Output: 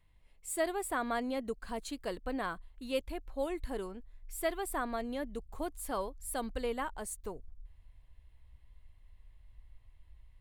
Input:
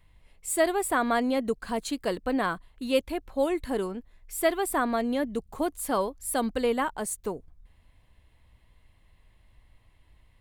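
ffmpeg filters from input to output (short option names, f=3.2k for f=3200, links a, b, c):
-af "asubboost=boost=4.5:cutoff=84,volume=-8.5dB"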